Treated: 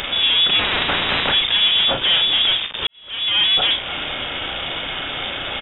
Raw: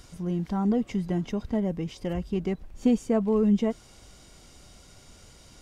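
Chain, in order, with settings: high-pass 320 Hz 6 dB/octave; hum notches 60/120/180/240/300/360/420/480/540 Hz; compression, threshold -34 dBFS, peak gain reduction 12 dB; fuzz box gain 61 dB, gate -56 dBFS; doubling 35 ms -7 dB; frequency inversion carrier 3.6 kHz; 0.59–1.32 s: spectrum-flattening compressor 4:1; 2.87–3.39 s: fade in quadratic; trim -3 dB

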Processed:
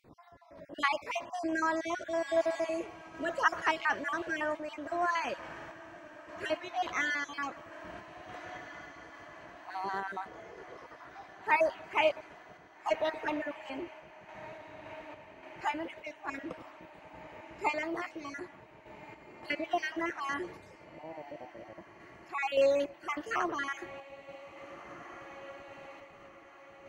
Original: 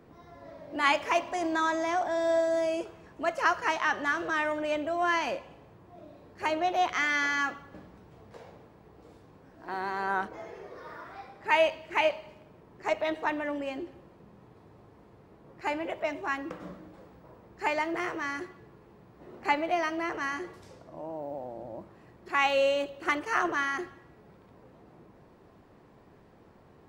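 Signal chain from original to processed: random holes in the spectrogram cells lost 39%; echo that smears into a reverb 1684 ms, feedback 71%, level -16 dB; random-step tremolo

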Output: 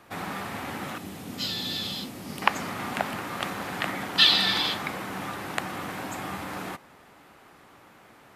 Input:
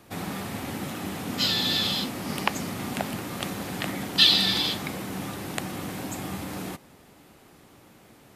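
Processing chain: peaking EQ 1.3 kHz +10 dB 2.5 oct, from 0.98 s -2.5 dB, from 2.42 s +11.5 dB; trim -5.5 dB

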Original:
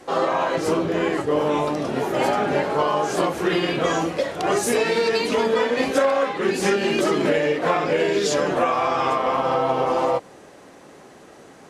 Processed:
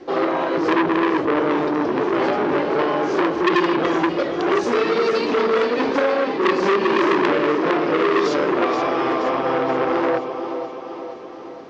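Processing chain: steep low-pass 5.6 kHz 36 dB/octave; peaking EQ 340 Hz +12.5 dB 0.71 oct; thinning echo 476 ms, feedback 56%, high-pass 200 Hz, level -9 dB; transformer saturation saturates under 1.8 kHz; trim -1 dB

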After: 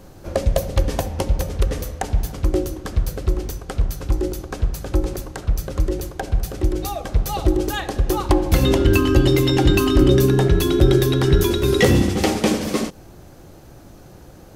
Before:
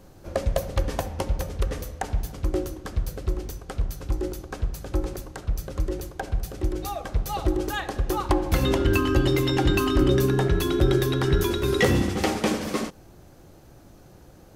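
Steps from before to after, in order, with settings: dynamic bell 1.3 kHz, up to -5 dB, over -40 dBFS, Q 0.79; trim +6.5 dB

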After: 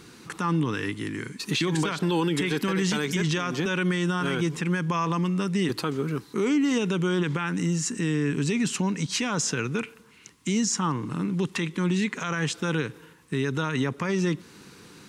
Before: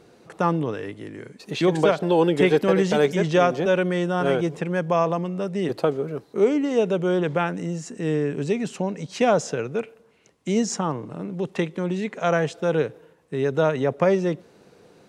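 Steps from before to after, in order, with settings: FFT filter 300 Hz 0 dB, 640 Hz -17 dB, 1 kHz +1 dB, 9.4 kHz +7 dB; in parallel at +0.5 dB: compression, threshold -32 dBFS, peak gain reduction 16 dB; on the sum: peak limiter -16.5 dBFS, peak gain reduction 11.5 dB

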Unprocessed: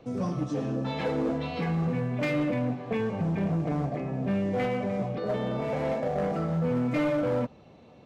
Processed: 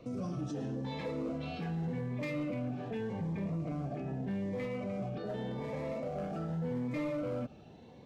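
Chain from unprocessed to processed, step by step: peak limiter -30.5 dBFS, peak gain reduction 10 dB; Shepard-style phaser rising 0.84 Hz

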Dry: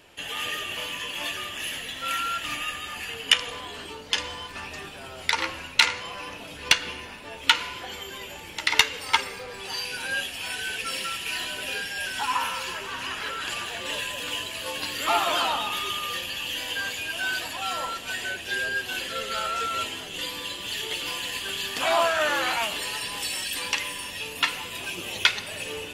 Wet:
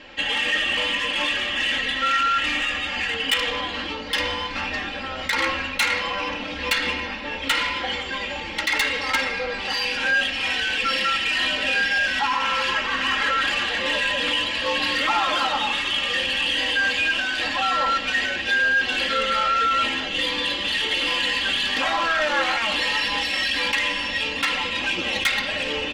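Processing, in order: in parallel at 0 dB: compressor with a negative ratio -32 dBFS, ratio -1; on the sum: low-pass 5 kHz 24 dB/octave; peaking EQ 1.9 kHz +5 dB 0.42 oct; on a send at -21 dB: reverberation RT60 0.85 s, pre-delay 5 ms; on the sum: saturation -17.5 dBFS, distortion -12 dB; comb 3.7 ms, depth 92%

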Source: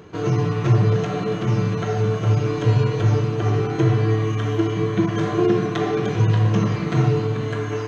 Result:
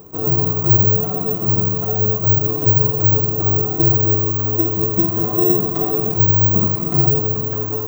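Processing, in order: high-order bell 2.4 kHz -13 dB; careless resampling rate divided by 2×, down none, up zero stuff

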